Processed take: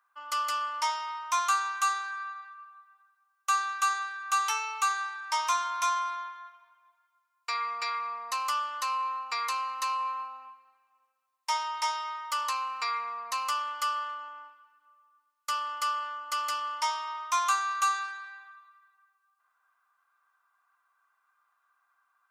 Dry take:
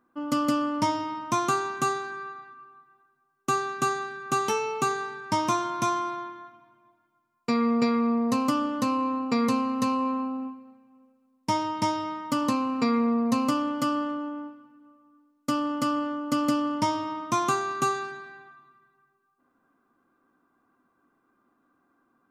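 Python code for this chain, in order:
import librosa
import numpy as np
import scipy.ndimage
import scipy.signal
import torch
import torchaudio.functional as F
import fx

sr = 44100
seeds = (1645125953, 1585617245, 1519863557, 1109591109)

y = scipy.signal.sosfilt(scipy.signal.butter(4, 1000.0, 'highpass', fs=sr, output='sos'), x)
y = y * 10.0 ** (1.5 / 20.0)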